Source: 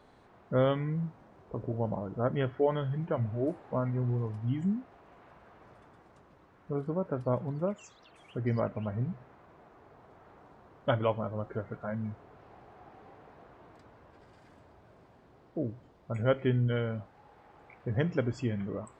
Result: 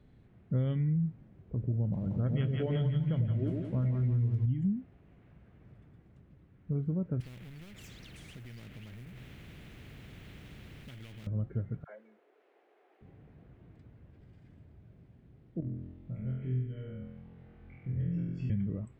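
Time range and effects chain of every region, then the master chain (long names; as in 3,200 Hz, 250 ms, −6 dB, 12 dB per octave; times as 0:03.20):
0:01.93–0:04.46: parametric band 5,600 Hz +12 dB 2.8 octaves + echo with a time of its own for lows and highs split 680 Hz, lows 100 ms, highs 172 ms, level −3.5 dB
0:07.20–0:11.27: mu-law and A-law mismatch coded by mu + downward compressor 3 to 1, threshold −39 dBFS + every bin compressed towards the loudest bin 4 to 1
0:11.84–0:13.01: Butterworth high-pass 380 Hz + all-pass dispersion lows, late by 62 ms, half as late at 830 Hz
0:15.60–0:18.50: downward compressor 10 to 1, threshold −41 dBFS + high-frequency loss of the air 130 metres + flutter between parallel walls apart 4 metres, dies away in 1.1 s
whole clip: drawn EQ curve 150 Hz 0 dB, 1,000 Hz −26 dB, 2,100 Hz −14 dB, 3,200 Hz −15 dB, 4,900 Hz −21 dB; downward compressor, threshold −33 dBFS; level +7 dB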